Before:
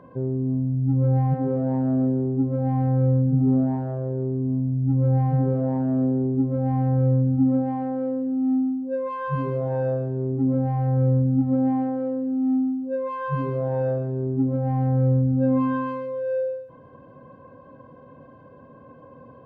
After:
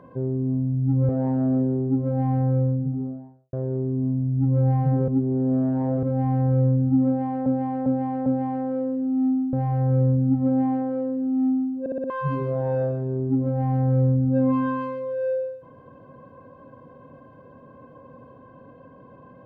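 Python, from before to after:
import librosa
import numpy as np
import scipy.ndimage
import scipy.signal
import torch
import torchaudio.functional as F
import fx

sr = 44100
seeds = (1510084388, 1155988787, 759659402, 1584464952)

y = fx.studio_fade_out(x, sr, start_s=2.71, length_s=1.29)
y = fx.edit(y, sr, fx.cut(start_s=1.09, length_s=0.47),
    fx.reverse_span(start_s=5.55, length_s=0.95),
    fx.repeat(start_s=7.53, length_s=0.4, count=4),
    fx.cut(start_s=8.8, length_s=1.8),
    fx.stutter_over(start_s=12.87, slice_s=0.06, count=5), tone=tone)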